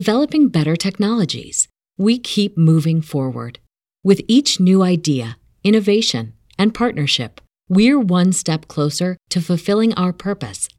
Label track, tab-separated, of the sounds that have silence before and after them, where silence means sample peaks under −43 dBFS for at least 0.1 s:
1.990000	3.590000	sound
4.050000	5.350000	sound
5.650000	6.320000	sound
6.510000	7.420000	sound
7.700000	9.170000	sound